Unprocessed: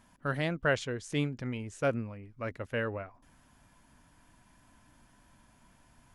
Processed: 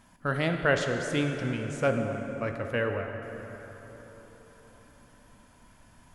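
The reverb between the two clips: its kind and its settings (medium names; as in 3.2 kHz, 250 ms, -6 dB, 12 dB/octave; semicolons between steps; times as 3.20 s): plate-style reverb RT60 4.3 s, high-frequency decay 0.55×, DRR 4 dB; trim +3.5 dB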